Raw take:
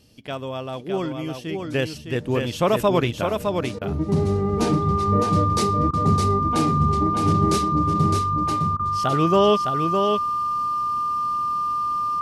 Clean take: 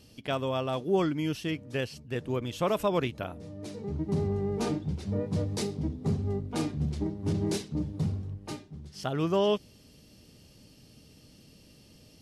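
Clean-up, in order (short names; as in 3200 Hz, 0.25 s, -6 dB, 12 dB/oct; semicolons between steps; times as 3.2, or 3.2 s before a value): notch 1200 Hz, Q 30; interpolate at 3.79/5.91/8.77, 23 ms; inverse comb 0.61 s -5 dB; gain 0 dB, from 1.59 s -8 dB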